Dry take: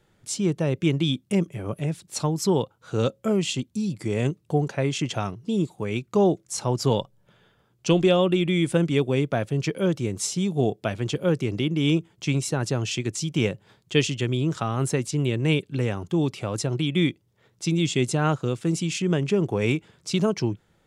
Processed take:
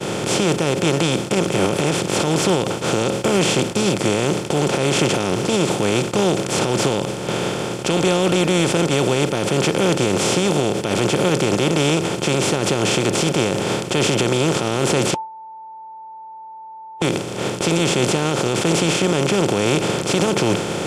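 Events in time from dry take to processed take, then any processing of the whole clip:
0:15.14–0:17.02: beep over 885 Hz −21.5 dBFS
whole clip: compressor on every frequency bin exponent 0.2; downward expander −16 dBFS; brickwall limiter −8 dBFS

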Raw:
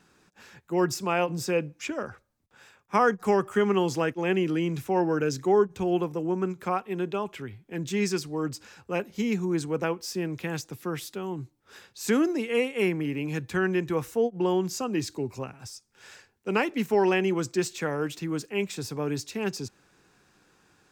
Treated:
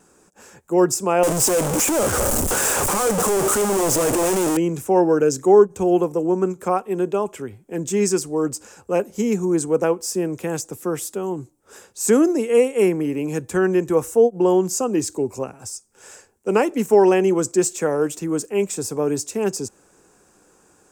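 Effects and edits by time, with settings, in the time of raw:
0:01.23–0:04.57: sign of each sample alone
whole clip: graphic EQ with 10 bands 125 Hz −6 dB, 500 Hz +5 dB, 2,000 Hz −6 dB, 4,000 Hz −11 dB, 8,000 Hz +11 dB; level +6.5 dB

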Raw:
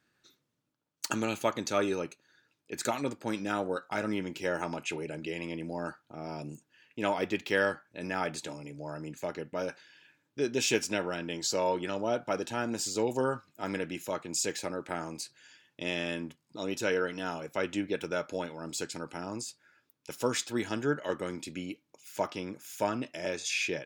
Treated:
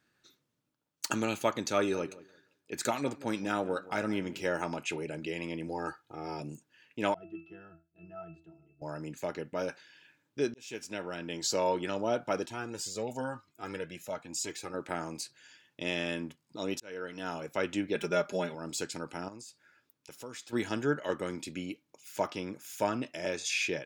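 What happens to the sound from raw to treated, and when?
0:01.77–0:04.49: feedback echo with a low-pass in the loop 173 ms, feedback 23%, level −17.5 dB
0:05.67–0:06.40: comb filter 2.4 ms
0:07.14–0:08.82: resonances in every octave E, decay 0.3 s
0:10.54–0:11.50: fade in
0:12.46–0:14.74: flanger whose copies keep moving one way rising 1 Hz
0:16.80–0:17.40: fade in
0:17.95–0:18.55: comb filter 5 ms, depth 95%
0:19.28–0:20.53: downward compressor 2 to 1, threshold −52 dBFS

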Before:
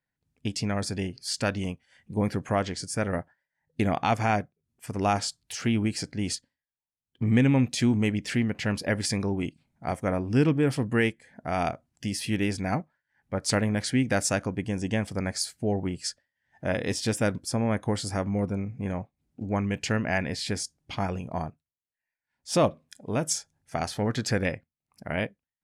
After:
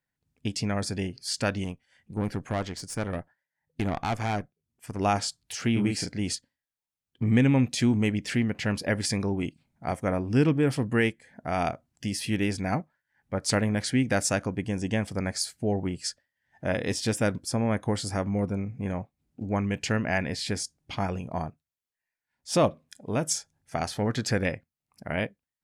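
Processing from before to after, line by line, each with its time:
0:01.64–0:05.00: tube saturation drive 21 dB, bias 0.65
0:05.73–0:06.19: double-tracking delay 34 ms −3 dB

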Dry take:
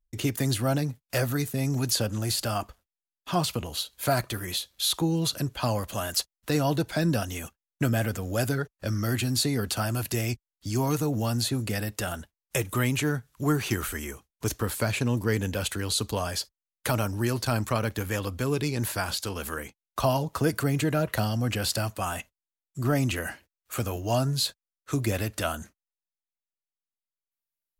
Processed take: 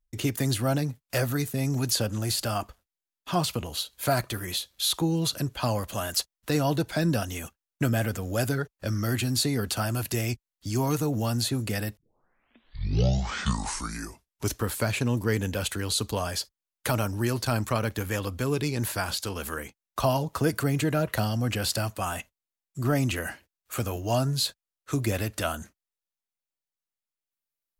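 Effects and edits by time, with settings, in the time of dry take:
0:11.97: tape start 2.63 s

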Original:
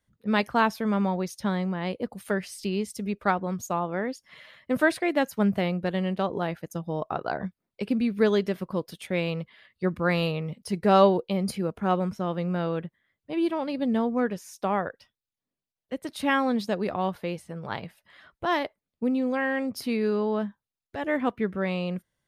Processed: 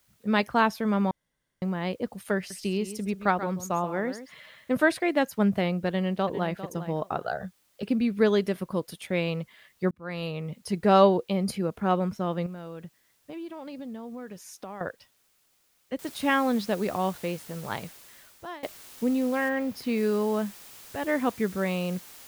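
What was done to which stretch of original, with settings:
0:01.11–0:01.62: fill with room tone
0:02.37–0:04.75: single-tap delay 132 ms −12 dB
0:05.87–0:06.59: delay throw 400 ms, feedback 20%, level −12.5 dB
0:07.23–0:07.83: phaser with its sweep stopped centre 1,500 Hz, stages 8
0:08.38–0:09.01: parametric band 9,900 Hz +9 dB 0.49 octaves
0:09.91–0:10.61: fade in
0:12.46–0:14.81: downward compressor, threshold −36 dBFS
0:15.99: noise floor change −68 dB −48 dB
0:17.74–0:18.63: fade out, to −21.5 dB
0:19.48–0:19.96: parametric band 9,300 Hz −12.5 dB → −4 dB 2 octaves

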